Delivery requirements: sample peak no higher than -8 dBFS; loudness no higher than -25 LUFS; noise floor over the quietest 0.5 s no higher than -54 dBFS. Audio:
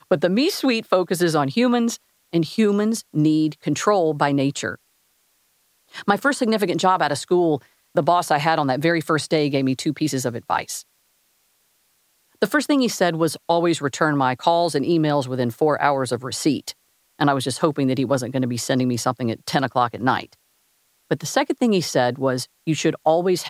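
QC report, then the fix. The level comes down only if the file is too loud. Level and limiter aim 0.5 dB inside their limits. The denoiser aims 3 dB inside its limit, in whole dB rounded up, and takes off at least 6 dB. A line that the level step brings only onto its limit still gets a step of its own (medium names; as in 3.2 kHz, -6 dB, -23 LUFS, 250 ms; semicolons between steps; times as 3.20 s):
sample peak -3.0 dBFS: fail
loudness -21.0 LUFS: fail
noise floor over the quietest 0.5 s -64 dBFS: pass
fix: trim -4.5 dB; peak limiter -8.5 dBFS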